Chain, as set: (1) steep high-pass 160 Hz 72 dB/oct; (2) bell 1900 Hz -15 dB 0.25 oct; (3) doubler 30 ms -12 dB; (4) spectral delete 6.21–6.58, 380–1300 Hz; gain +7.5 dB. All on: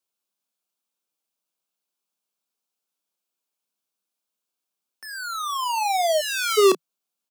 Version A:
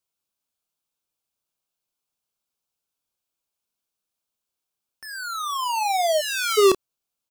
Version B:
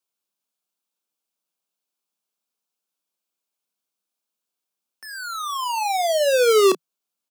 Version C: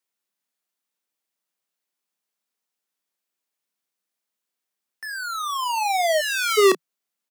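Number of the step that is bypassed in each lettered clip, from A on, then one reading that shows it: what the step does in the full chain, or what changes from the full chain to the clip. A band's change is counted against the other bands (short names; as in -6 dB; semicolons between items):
1, crest factor change -2.5 dB; 4, 500 Hz band +3.5 dB; 2, 2 kHz band +4.0 dB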